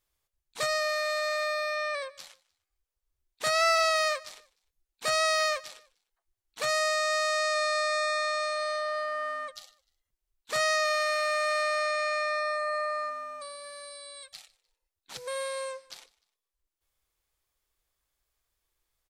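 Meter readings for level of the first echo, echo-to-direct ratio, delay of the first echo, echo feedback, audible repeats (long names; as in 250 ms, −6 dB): −22.5 dB, −22.0 dB, 151 ms, 34%, 2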